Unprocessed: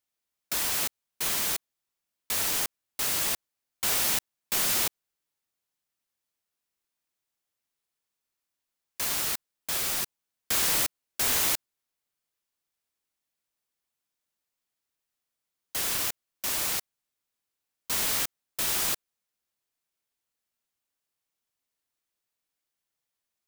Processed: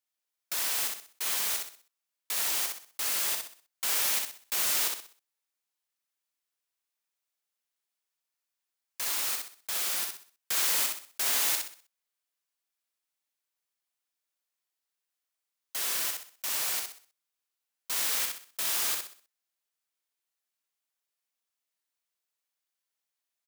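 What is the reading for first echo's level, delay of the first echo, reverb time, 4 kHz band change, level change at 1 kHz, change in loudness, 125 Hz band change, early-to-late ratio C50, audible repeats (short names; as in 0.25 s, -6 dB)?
-4.0 dB, 63 ms, none, -1.5 dB, -3.0 dB, -1.5 dB, under -15 dB, none, 4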